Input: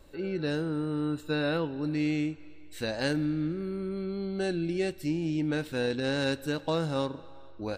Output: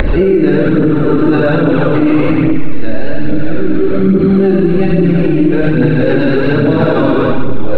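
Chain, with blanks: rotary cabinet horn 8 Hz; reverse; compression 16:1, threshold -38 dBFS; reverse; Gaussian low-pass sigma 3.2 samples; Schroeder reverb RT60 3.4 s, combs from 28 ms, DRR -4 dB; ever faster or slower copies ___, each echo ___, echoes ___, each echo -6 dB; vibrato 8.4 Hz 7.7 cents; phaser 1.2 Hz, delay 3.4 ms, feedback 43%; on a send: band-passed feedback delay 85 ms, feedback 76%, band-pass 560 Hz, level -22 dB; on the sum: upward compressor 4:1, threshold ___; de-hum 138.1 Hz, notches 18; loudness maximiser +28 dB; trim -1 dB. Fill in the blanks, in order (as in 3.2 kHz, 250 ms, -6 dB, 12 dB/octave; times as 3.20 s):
99 ms, -2 st, 2, -27 dBFS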